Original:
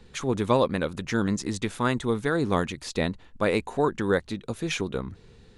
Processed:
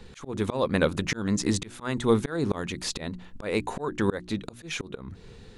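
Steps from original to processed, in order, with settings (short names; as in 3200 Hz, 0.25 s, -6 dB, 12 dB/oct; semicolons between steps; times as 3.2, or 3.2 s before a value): notches 60/120/180/240/300/360 Hz; auto swell 0.315 s; gain +5.5 dB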